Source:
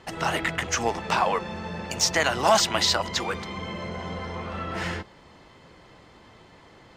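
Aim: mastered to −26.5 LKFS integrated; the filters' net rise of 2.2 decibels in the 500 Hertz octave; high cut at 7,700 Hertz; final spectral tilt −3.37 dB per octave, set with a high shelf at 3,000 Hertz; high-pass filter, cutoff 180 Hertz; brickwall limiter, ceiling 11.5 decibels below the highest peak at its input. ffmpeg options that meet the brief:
ffmpeg -i in.wav -af "highpass=180,lowpass=7700,equalizer=frequency=500:width_type=o:gain=3.5,highshelf=frequency=3000:gain=-9,volume=4.5dB,alimiter=limit=-14dB:level=0:latency=1" out.wav

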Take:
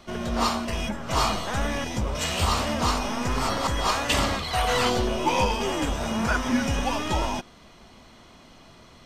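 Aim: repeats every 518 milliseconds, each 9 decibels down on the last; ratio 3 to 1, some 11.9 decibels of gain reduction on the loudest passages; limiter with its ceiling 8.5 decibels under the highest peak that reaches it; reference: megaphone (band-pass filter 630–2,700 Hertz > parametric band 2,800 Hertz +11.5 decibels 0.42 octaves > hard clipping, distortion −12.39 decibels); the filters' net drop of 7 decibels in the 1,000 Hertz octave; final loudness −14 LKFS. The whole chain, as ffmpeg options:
ffmpeg -i in.wav -af "equalizer=frequency=1000:width_type=o:gain=-8,acompressor=threshold=-37dB:ratio=3,alimiter=level_in=7dB:limit=-24dB:level=0:latency=1,volume=-7dB,highpass=630,lowpass=2700,equalizer=frequency=2800:width_type=o:width=0.42:gain=11.5,aecho=1:1:518|1036|1554|2072:0.355|0.124|0.0435|0.0152,asoftclip=type=hard:threshold=-40dB,volume=29.5dB" out.wav

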